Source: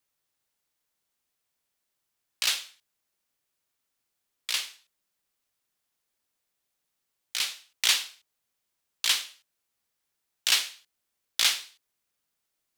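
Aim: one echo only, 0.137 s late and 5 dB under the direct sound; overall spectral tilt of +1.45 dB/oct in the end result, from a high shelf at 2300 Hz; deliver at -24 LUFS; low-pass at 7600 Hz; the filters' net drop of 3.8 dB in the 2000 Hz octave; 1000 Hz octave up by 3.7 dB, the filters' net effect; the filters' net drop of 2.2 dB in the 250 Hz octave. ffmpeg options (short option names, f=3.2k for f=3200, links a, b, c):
-af "lowpass=7.6k,equalizer=f=250:t=o:g=-3.5,equalizer=f=1k:t=o:g=7,equalizer=f=2k:t=o:g=-8.5,highshelf=f=2.3k:g=3,aecho=1:1:137:0.562,volume=2.5dB"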